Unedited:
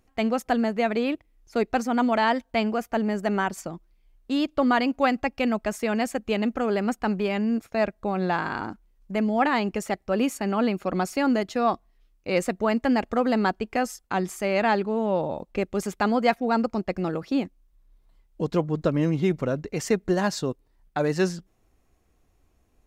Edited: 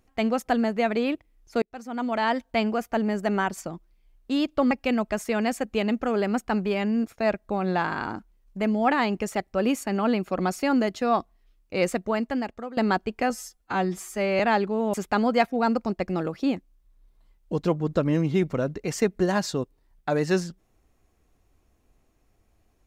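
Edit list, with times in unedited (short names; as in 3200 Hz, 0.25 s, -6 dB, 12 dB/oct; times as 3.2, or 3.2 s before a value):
1.62–2.45 fade in
4.71–5.25 cut
12.44–13.31 fade out, to -18 dB
13.84–14.57 stretch 1.5×
15.11–15.82 cut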